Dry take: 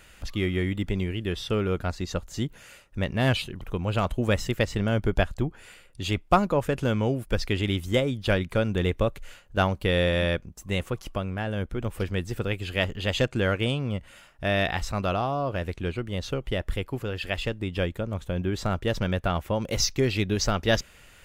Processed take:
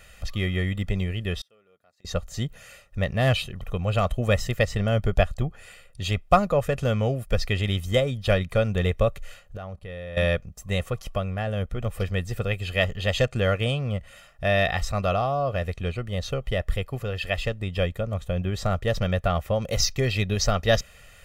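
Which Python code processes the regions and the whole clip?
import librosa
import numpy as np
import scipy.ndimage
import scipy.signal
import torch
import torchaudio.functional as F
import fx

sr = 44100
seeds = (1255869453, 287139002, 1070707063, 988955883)

y = fx.chain(x, sr, fx.highpass(hz=280.0, slope=12),
    fx.high_shelf(hz=10000.0, db=8.5),
    fx.gate_flip(shuts_db=-29.0, range_db=-32), at=(1.41, 2.05))
y = fx.chain(y, sr, fx.peak_eq(hz=6300.0, db=-6.5, octaves=2.3),
    fx.level_steps(step_db=19),
    fx.brickwall_lowpass(high_hz=12000.0), at=(9.57, 10.17))
y = fx.notch(y, sr, hz=1300.0, q=21.0)
y = y + 0.64 * np.pad(y, (int(1.6 * sr / 1000.0), 0))[:len(y)]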